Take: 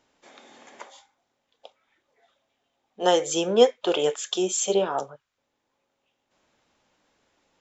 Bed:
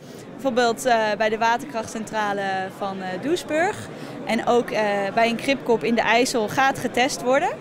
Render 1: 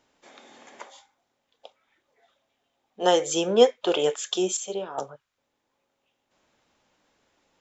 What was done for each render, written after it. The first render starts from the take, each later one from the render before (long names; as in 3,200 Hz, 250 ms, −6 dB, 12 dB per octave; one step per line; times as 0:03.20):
0:04.57–0:04.98: clip gain −9 dB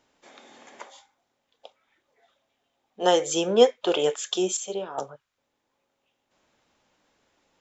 no processing that can be heard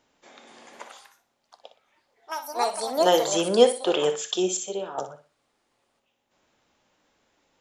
delay with pitch and tempo change per echo 300 ms, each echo +5 semitones, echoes 2, each echo −6 dB
flutter between parallel walls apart 10.3 metres, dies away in 0.33 s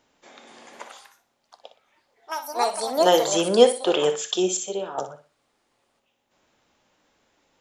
level +2 dB